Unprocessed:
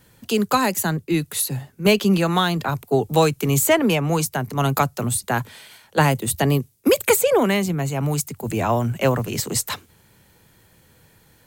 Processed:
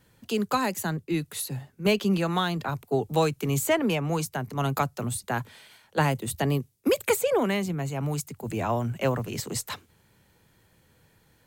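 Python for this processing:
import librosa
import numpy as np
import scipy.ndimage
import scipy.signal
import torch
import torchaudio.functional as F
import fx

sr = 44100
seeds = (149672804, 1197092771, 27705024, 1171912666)

y = fx.high_shelf(x, sr, hz=6900.0, db=-5.0)
y = F.gain(torch.from_numpy(y), -6.5).numpy()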